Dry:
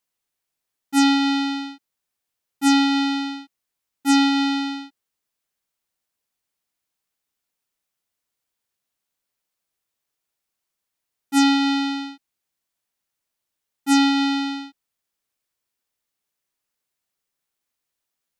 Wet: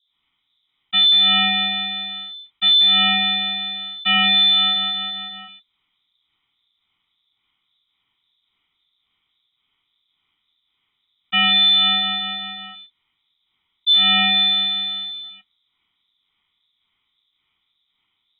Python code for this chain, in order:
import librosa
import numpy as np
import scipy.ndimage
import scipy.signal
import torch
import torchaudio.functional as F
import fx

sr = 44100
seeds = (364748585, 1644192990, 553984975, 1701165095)

y = fx.wiener(x, sr, points=41)
y = fx.low_shelf(y, sr, hz=300.0, db=-7.5)
y = fx.leveller(y, sr, passes=3)
y = fx.harmonic_tremolo(y, sr, hz=1.8, depth_pct=100, crossover_hz=490.0)
y = fx.echo_feedback(y, sr, ms=181, feedback_pct=39, wet_db=-7.5)
y = fx.freq_invert(y, sr, carrier_hz=3800)
y = fx.env_flatten(y, sr, amount_pct=50)